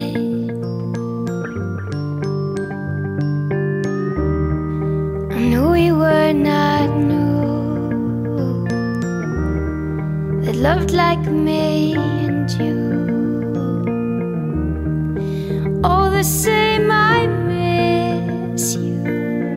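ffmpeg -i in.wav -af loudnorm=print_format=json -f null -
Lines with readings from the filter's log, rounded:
"input_i" : "-18.3",
"input_tp" : "-1.7",
"input_lra" : "4.7",
"input_thresh" : "-28.3",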